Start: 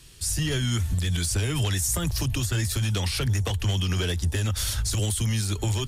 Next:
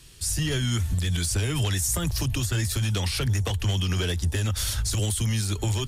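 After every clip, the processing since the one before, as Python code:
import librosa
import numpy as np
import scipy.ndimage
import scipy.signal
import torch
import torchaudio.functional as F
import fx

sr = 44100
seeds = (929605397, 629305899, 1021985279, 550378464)

y = x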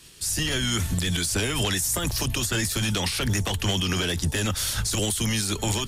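y = fx.spec_clip(x, sr, under_db=13)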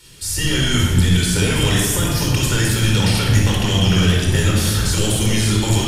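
y = fx.dmg_crackle(x, sr, seeds[0], per_s=20.0, level_db=-53.0)
y = fx.room_shoebox(y, sr, seeds[1], volume_m3=2900.0, walls='mixed', distance_m=4.5)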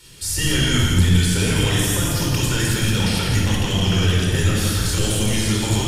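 y = fx.rider(x, sr, range_db=5, speed_s=2.0)
y = y + 10.0 ** (-5.0 / 20.0) * np.pad(y, (int(168 * sr / 1000.0), 0))[:len(y)]
y = F.gain(torch.from_numpy(y), -3.5).numpy()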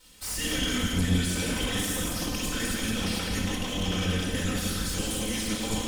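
y = fx.lower_of_two(x, sr, delay_ms=3.9)
y = F.gain(torch.from_numpy(y), -7.5).numpy()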